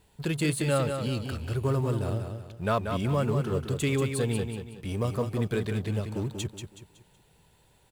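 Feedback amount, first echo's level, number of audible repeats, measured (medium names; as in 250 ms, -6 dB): 37%, -6.5 dB, 4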